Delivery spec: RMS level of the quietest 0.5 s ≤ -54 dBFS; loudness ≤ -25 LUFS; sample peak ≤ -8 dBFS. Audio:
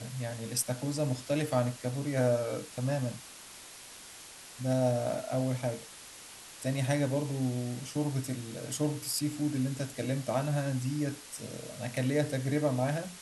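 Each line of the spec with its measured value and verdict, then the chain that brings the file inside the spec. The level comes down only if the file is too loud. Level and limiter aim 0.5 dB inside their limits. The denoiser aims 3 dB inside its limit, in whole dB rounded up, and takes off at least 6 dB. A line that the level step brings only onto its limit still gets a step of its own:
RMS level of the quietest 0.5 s -49 dBFS: fail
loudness -32.5 LUFS: OK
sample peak -15.0 dBFS: OK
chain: denoiser 8 dB, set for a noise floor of -49 dBFS

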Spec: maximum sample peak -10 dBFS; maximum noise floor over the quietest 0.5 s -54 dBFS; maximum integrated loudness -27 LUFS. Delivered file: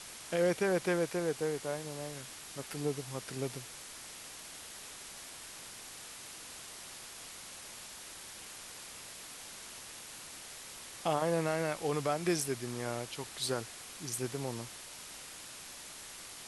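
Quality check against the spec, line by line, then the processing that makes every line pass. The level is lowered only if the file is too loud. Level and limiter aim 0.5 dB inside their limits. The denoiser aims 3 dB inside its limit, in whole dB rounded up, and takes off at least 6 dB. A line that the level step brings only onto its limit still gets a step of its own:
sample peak -18.5 dBFS: OK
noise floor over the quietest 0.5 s -48 dBFS: fail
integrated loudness -38.0 LUFS: OK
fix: denoiser 9 dB, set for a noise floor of -48 dBFS

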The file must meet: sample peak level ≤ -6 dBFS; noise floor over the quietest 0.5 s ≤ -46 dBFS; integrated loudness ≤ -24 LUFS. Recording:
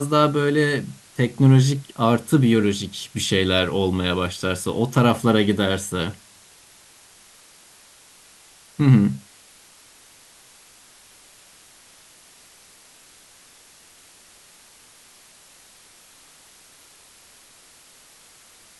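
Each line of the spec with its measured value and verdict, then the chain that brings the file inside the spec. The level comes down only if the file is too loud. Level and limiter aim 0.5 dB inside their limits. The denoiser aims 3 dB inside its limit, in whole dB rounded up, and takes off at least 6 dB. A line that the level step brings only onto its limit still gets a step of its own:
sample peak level -4.5 dBFS: fail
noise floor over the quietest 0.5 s -51 dBFS: OK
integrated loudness -20.0 LUFS: fail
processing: gain -4.5 dB

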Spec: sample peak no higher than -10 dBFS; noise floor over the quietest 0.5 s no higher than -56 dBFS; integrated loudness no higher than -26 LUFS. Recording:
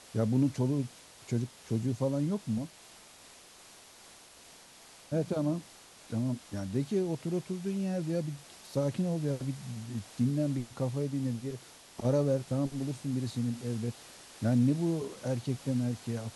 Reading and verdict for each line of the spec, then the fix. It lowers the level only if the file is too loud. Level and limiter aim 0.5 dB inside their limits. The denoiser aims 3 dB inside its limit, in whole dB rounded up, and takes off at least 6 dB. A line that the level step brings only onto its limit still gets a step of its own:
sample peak -17.5 dBFS: OK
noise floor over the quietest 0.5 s -55 dBFS: fail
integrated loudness -33.0 LUFS: OK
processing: denoiser 6 dB, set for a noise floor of -55 dBFS

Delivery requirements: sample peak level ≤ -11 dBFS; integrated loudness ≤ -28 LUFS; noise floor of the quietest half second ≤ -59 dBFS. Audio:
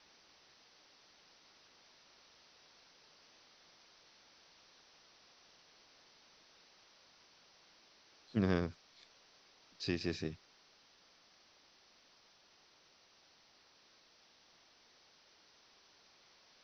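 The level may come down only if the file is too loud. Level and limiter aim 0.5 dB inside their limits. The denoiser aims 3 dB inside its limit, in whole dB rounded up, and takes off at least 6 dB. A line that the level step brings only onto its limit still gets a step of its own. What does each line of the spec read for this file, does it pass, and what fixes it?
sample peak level -18.0 dBFS: OK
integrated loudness -38.0 LUFS: OK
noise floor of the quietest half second -67 dBFS: OK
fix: none

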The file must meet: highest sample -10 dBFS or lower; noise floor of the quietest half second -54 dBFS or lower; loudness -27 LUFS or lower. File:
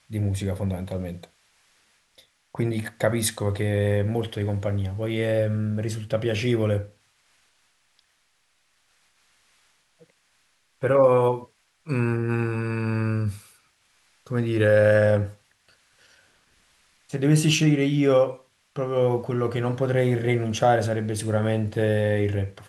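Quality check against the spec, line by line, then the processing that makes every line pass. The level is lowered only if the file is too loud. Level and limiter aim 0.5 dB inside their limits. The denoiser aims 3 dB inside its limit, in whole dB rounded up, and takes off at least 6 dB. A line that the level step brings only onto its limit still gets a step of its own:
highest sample -7.5 dBFS: fail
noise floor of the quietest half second -67 dBFS: OK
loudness -23.5 LUFS: fail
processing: gain -4 dB

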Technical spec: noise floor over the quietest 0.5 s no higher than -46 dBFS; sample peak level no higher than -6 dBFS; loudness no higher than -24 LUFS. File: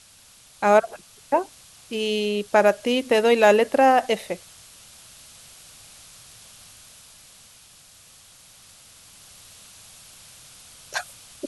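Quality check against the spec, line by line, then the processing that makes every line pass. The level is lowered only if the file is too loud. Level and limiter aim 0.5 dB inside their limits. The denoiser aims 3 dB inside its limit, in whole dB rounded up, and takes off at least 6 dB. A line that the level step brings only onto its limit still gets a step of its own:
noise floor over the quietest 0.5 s -52 dBFS: OK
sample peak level -4.5 dBFS: fail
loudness -21.0 LUFS: fail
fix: gain -3.5 dB

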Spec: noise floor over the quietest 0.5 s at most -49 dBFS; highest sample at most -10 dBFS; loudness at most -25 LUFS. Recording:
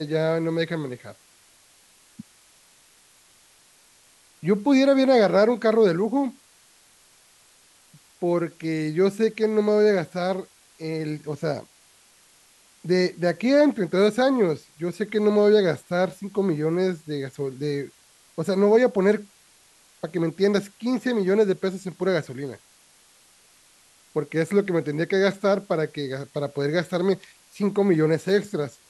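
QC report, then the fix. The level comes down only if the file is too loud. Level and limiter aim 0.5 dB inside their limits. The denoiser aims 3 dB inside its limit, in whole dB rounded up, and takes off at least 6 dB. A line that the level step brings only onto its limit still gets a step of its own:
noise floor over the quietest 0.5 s -57 dBFS: OK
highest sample -7.0 dBFS: fail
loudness -23.0 LUFS: fail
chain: gain -2.5 dB; limiter -10.5 dBFS

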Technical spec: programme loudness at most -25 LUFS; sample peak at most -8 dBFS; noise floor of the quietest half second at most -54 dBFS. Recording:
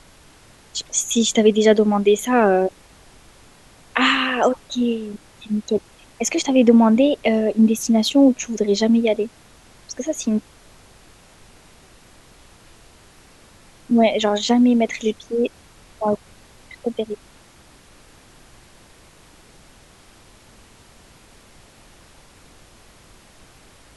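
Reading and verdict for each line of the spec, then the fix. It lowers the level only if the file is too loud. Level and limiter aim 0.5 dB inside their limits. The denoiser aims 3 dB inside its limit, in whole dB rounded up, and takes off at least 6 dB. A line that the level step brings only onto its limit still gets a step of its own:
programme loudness -19.0 LUFS: fail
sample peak -2.5 dBFS: fail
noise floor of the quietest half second -49 dBFS: fail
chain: gain -6.5 dB

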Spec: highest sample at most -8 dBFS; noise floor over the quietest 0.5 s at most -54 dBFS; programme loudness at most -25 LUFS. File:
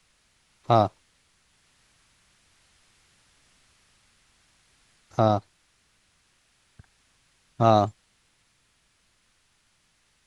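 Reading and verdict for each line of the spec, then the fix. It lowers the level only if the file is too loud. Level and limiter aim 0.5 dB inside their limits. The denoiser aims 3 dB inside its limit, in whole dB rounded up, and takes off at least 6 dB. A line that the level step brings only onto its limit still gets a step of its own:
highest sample -5.0 dBFS: fail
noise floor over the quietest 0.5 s -67 dBFS: OK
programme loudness -23.5 LUFS: fail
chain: gain -2 dB; limiter -8.5 dBFS

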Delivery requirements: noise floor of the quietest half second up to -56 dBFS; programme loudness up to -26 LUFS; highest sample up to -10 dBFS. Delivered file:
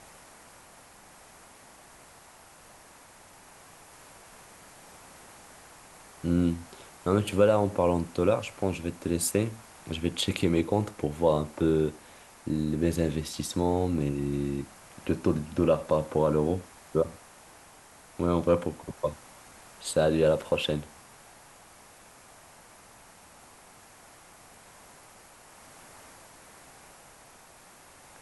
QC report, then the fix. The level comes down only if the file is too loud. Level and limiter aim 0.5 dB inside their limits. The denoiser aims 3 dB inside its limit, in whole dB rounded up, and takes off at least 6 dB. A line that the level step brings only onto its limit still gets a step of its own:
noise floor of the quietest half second -53 dBFS: fail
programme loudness -28.0 LUFS: OK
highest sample -9.0 dBFS: fail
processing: denoiser 6 dB, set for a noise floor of -53 dBFS; limiter -10.5 dBFS

